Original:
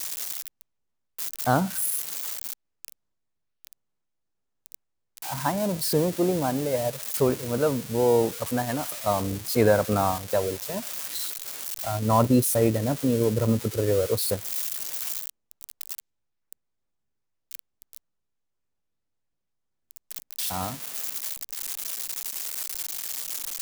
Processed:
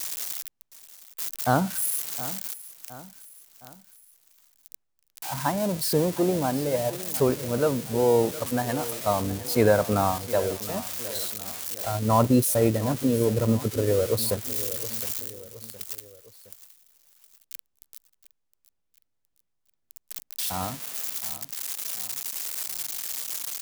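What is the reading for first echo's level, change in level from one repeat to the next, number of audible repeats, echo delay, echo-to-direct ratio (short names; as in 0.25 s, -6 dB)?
-16.0 dB, -6.0 dB, 3, 0.715 s, -15.0 dB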